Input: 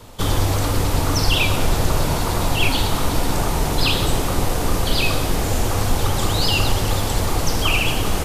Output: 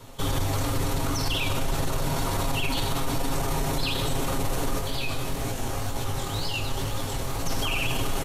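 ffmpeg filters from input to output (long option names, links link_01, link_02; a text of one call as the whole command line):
ffmpeg -i in.wav -filter_complex "[0:a]bandreject=frequency=4900:width=16,aecho=1:1:7.4:0.62,alimiter=limit=-12.5dB:level=0:latency=1:release=17,asplit=3[link_01][link_02][link_03];[link_01]afade=type=out:start_time=4.78:duration=0.02[link_04];[link_02]flanger=delay=16.5:depth=7.4:speed=2,afade=type=in:start_time=4.78:duration=0.02,afade=type=out:start_time=7.45:duration=0.02[link_05];[link_03]afade=type=in:start_time=7.45:duration=0.02[link_06];[link_04][link_05][link_06]amix=inputs=3:normalize=0,volume=-5dB" out.wav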